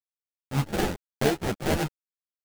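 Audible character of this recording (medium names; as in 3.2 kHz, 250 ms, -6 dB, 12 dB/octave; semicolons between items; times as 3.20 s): a quantiser's noise floor 6-bit, dither none; phasing stages 8, 3.4 Hz, lowest notch 360–1600 Hz; aliases and images of a low sample rate 1.1 kHz, jitter 20%; a shimmering, thickened sound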